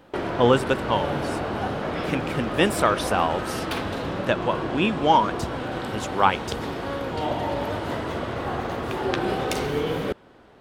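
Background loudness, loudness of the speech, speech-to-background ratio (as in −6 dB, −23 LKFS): −28.5 LKFS, −24.0 LKFS, 4.5 dB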